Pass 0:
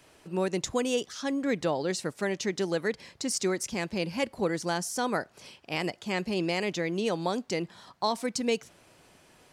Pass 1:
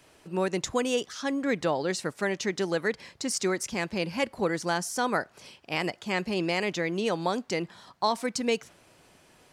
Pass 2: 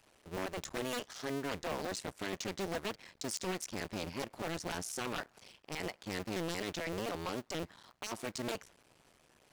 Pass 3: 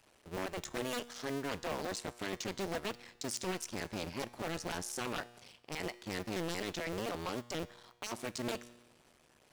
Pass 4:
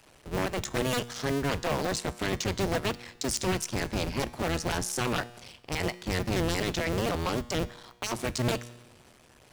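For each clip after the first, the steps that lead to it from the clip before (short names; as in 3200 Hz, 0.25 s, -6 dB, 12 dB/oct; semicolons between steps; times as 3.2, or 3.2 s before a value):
dynamic EQ 1400 Hz, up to +4 dB, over -45 dBFS, Q 0.72
cycle switcher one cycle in 2, muted; wavefolder -24 dBFS; gain -5 dB
resonator 120 Hz, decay 1.1 s, harmonics all, mix 50%; gain +5.5 dB
octaver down 1 oct, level 0 dB; gain +8.5 dB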